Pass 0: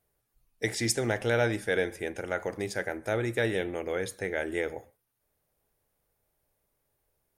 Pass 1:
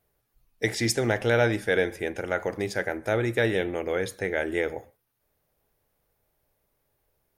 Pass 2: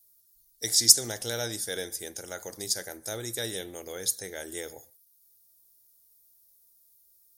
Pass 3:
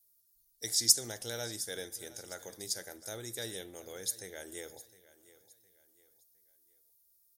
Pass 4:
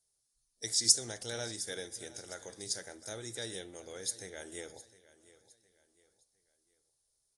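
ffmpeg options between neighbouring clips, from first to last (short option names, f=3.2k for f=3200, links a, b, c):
-af "equalizer=f=8.7k:w=1.3:g=-5.5,volume=4dB"
-af "aexciter=amount=13.3:drive=7.1:freq=3.9k,volume=-12dB"
-af "aecho=1:1:710|1420|2130:0.119|0.0428|0.0154,volume=-7dB"
-ar 22050 -c:a aac -b:a 48k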